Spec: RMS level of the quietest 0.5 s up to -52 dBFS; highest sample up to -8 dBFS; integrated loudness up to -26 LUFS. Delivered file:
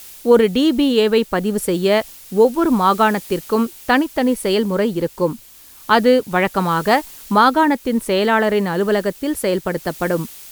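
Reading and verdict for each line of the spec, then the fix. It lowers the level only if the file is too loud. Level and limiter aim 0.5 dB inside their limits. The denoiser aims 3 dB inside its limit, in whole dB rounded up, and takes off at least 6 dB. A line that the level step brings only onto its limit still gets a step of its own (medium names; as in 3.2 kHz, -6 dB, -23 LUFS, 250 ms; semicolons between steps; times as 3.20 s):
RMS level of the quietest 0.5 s -43 dBFS: fail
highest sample -2.0 dBFS: fail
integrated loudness -17.5 LUFS: fail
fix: noise reduction 6 dB, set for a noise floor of -43 dBFS; trim -9 dB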